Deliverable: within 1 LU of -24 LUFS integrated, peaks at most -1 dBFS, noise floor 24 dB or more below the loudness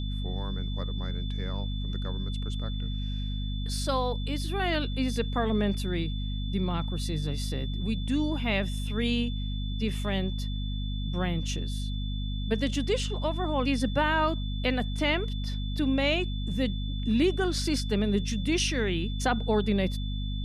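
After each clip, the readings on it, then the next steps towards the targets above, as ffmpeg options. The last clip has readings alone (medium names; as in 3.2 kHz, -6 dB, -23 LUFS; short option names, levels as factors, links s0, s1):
hum 50 Hz; highest harmonic 250 Hz; hum level -29 dBFS; steady tone 3.5 kHz; tone level -42 dBFS; loudness -29.5 LUFS; peak level -13.5 dBFS; loudness target -24.0 LUFS
-> -af "bandreject=f=50:t=h:w=6,bandreject=f=100:t=h:w=6,bandreject=f=150:t=h:w=6,bandreject=f=200:t=h:w=6,bandreject=f=250:t=h:w=6"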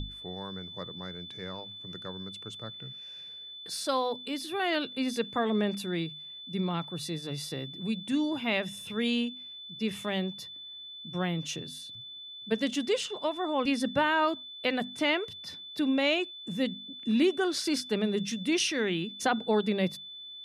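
hum not found; steady tone 3.5 kHz; tone level -42 dBFS
-> -af "bandreject=f=3500:w=30"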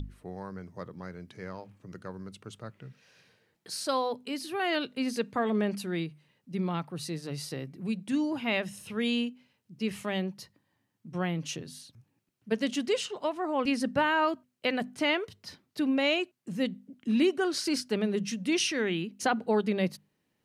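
steady tone not found; loudness -30.5 LUFS; peak level -15.0 dBFS; loudness target -24.0 LUFS
-> -af "volume=2.11"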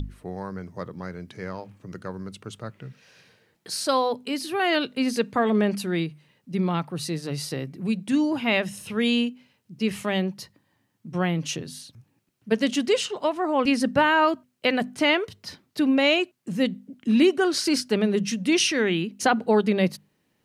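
loudness -24.0 LUFS; peak level -8.5 dBFS; noise floor -71 dBFS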